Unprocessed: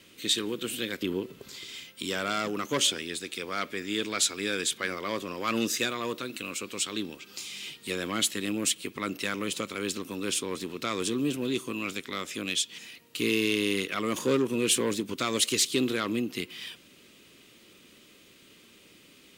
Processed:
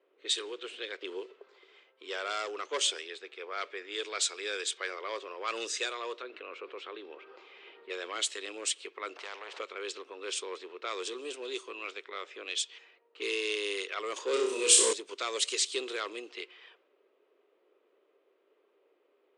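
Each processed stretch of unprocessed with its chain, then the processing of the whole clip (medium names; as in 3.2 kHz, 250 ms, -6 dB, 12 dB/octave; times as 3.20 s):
6.22–7.90 s: tape spacing loss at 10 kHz 25 dB + level flattener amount 50%
9.16–9.59 s: tone controls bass +7 dB, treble -13 dB + spectrum-flattening compressor 4:1
14.33–14.93 s: tone controls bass +12 dB, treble +10 dB + flutter echo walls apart 5.3 m, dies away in 0.61 s
whole clip: level-controlled noise filter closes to 730 Hz, open at -23.5 dBFS; Chebyshev band-pass 400–8700 Hz, order 4; trim -3.5 dB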